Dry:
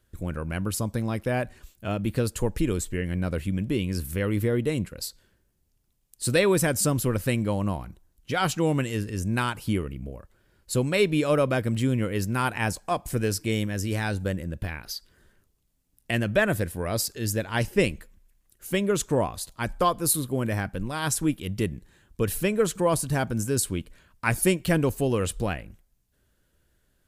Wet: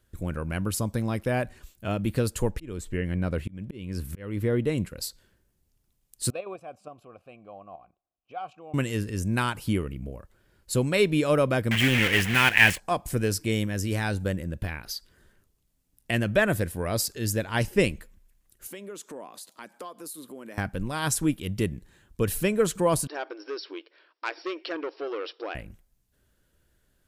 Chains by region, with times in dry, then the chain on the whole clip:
2.51–4.78 high shelf 5100 Hz -8.5 dB + auto swell 0.35 s
6.3–8.74 tilt -1.5 dB/oct + level quantiser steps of 9 dB + vowel filter a
11.71–12.8 block floating point 3-bit + band shelf 2300 Hz +14.5 dB 1.2 oct
18.67–20.58 HPF 230 Hz 24 dB/oct + compressor 3:1, threshold -42 dBFS
23.07–25.55 compressor 2:1, threshold -26 dBFS + brick-wall FIR band-pass 290–5700 Hz + core saturation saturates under 1800 Hz
whole clip: dry

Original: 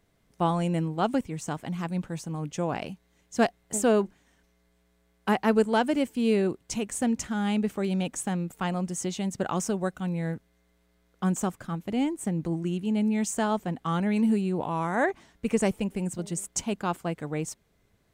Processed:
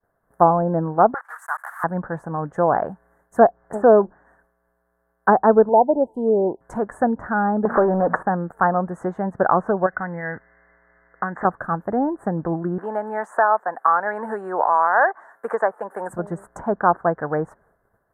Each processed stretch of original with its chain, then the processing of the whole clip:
1.14–1.84 block floating point 3-bit + HPF 1100 Hz 24 dB/oct
5.69–6.61 brick-wall FIR band-stop 1000–2800 Hz + bell 90 Hz -8 dB 2.5 oct
7.65–8.23 de-hum 57.84 Hz, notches 4 + compressor 5:1, threshold -33 dBFS + overdrive pedal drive 30 dB, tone 6900 Hz, clips at -15.5 dBFS
9.86–11.45 synth low-pass 2000 Hz, resonance Q 12 + compressor, threshold -31 dBFS
12.78–16.1 HPF 720 Hz + high shelf 5500 Hz -3.5 dB + three-band squash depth 70%
whole clip: treble ducked by the level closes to 800 Hz, closed at -22 dBFS; expander -60 dBFS; EQ curve 270 Hz 0 dB, 650 Hz +12 dB, 1700 Hz +12 dB, 2500 Hz -30 dB, 5200 Hz -28 dB, 11000 Hz +3 dB; gain +3 dB

